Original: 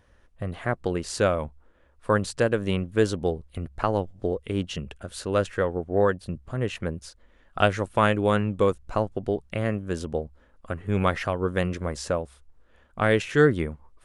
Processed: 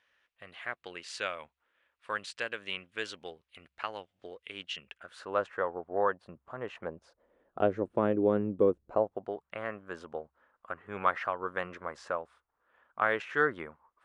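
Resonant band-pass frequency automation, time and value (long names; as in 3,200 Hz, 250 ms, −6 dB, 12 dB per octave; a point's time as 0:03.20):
resonant band-pass, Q 1.5
0:04.80 2,600 Hz
0:05.36 1,000 Hz
0:06.67 1,000 Hz
0:07.77 350 Hz
0:08.80 350 Hz
0:09.35 1,200 Hz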